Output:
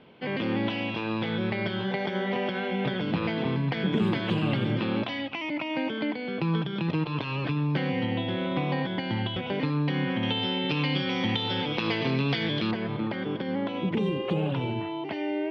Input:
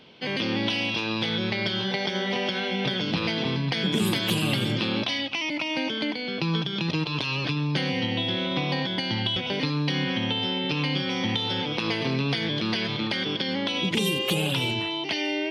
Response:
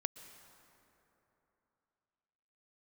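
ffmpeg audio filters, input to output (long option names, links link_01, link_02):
-af "asetnsamples=nb_out_samples=441:pad=0,asendcmd='10.23 lowpass f 3500;12.71 lowpass f 1300',lowpass=1900"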